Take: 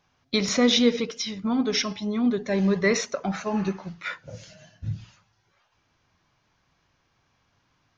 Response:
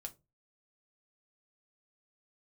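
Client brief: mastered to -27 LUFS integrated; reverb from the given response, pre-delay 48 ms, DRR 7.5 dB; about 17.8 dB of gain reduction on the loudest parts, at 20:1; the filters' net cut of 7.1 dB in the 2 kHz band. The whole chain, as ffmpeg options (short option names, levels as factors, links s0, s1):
-filter_complex "[0:a]equalizer=f=2000:t=o:g=-8,acompressor=threshold=0.0224:ratio=20,asplit=2[s0][s1];[1:a]atrim=start_sample=2205,adelay=48[s2];[s1][s2]afir=irnorm=-1:irlink=0,volume=0.668[s3];[s0][s3]amix=inputs=2:normalize=0,volume=3.35"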